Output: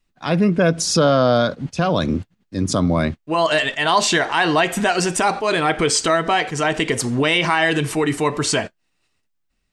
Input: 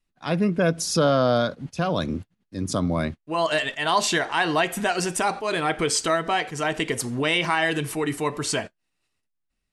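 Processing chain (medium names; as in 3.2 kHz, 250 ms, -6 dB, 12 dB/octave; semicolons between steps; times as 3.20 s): peaking EQ 11 kHz -12 dB 0.25 oct; in parallel at -1 dB: peak limiter -19 dBFS, peak gain reduction 10 dB; on the sum: trim +2 dB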